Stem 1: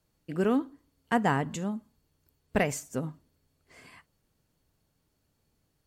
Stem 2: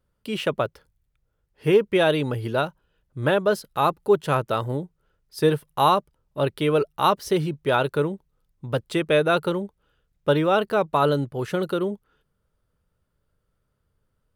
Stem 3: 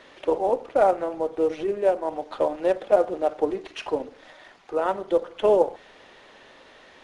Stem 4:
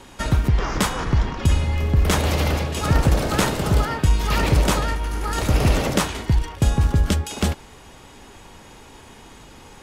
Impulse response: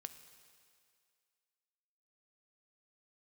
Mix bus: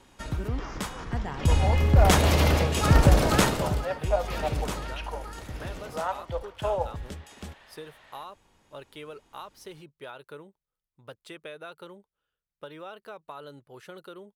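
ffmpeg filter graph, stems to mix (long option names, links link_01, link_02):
-filter_complex "[0:a]volume=-12dB[link_01];[1:a]lowshelf=frequency=410:gain=-12,acompressor=threshold=-25dB:ratio=6,adelay=2350,volume=-13dB[link_02];[2:a]highpass=frequency=630:width=0.5412,highpass=frequency=630:width=1.3066,lowpass=4500,adelay=1200,volume=-3.5dB[link_03];[3:a]volume=-0.5dB,afade=type=in:start_time=1.28:duration=0.4:silence=0.251189,afade=type=out:start_time=3.34:duration=0.47:silence=0.237137,afade=type=out:start_time=5.17:duration=0.3:silence=0.446684[link_04];[link_01][link_02][link_03][link_04]amix=inputs=4:normalize=0"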